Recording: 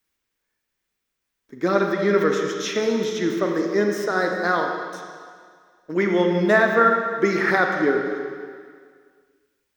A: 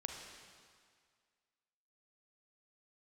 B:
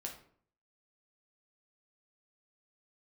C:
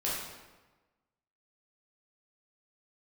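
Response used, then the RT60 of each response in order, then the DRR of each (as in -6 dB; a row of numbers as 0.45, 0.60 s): A; 2.0, 0.55, 1.2 s; 2.0, 0.0, -7.5 dB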